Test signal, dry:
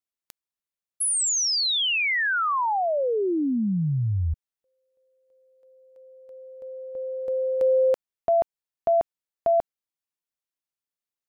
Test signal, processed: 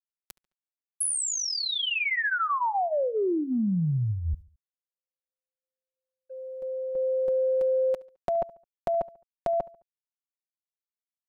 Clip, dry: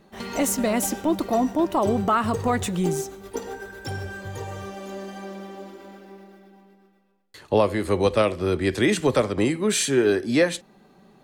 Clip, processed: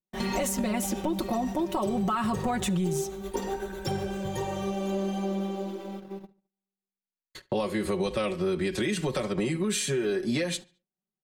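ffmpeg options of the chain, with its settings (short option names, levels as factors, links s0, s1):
-filter_complex "[0:a]agate=range=0.00398:threshold=0.00631:ratio=16:release=73:detection=rms,lowshelf=f=160:g=7.5,aecho=1:1:5.4:0.81,acrossover=split=2600[s0][s1];[s0]alimiter=limit=0.178:level=0:latency=1:release=462[s2];[s2][s1]amix=inputs=2:normalize=0,acompressor=threshold=0.0631:ratio=6:attack=7.4:release=99:knee=1:detection=rms,asplit=2[s3][s4];[s4]adelay=71,lowpass=f=4600:p=1,volume=0.0841,asplit=2[s5][s6];[s6]adelay=71,lowpass=f=4600:p=1,volume=0.43,asplit=2[s7][s8];[s8]adelay=71,lowpass=f=4600:p=1,volume=0.43[s9];[s3][s5][s7][s9]amix=inputs=4:normalize=0,adynamicequalizer=threshold=0.00708:dfrequency=3600:dqfactor=0.7:tfrequency=3600:tqfactor=0.7:attack=5:release=100:ratio=0.375:range=3:mode=cutabove:tftype=highshelf"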